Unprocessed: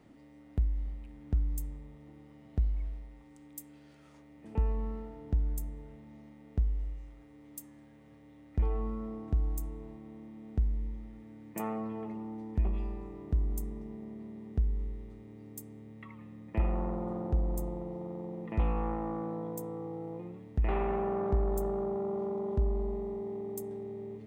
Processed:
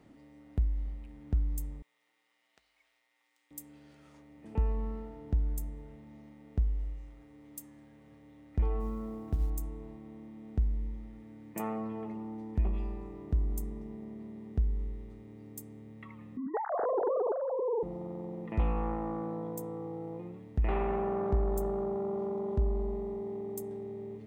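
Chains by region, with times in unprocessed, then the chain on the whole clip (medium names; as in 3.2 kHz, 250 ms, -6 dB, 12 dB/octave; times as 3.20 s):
1.82–3.51 s: median filter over 5 samples + Bessel high-pass 2.4 kHz
8.80–9.50 s: hum notches 60/120/180/240/300 Hz + companded quantiser 8-bit
16.37–17.83 s: formants replaced by sine waves + Butterworth band-stop 2.5 kHz, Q 0.96
whole clip: none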